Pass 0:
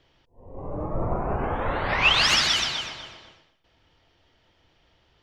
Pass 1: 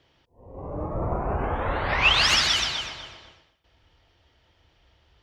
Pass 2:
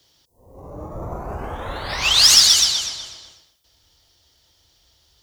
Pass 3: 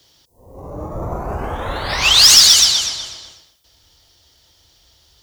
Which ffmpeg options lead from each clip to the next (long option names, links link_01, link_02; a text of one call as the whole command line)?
ffmpeg -i in.wav -af "highpass=45,asubboost=boost=3.5:cutoff=89" out.wav
ffmpeg -i in.wav -filter_complex "[0:a]acrossover=split=230|890|4900[link_01][link_02][link_03][link_04];[link_04]acontrast=71[link_05];[link_01][link_02][link_03][link_05]amix=inputs=4:normalize=0,aexciter=amount=3.8:drive=7.8:freq=3600,volume=-3dB" out.wav
ffmpeg -i in.wav -af "asoftclip=type=tanh:threshold=-6.5dB,volume=5.5dB" out.wav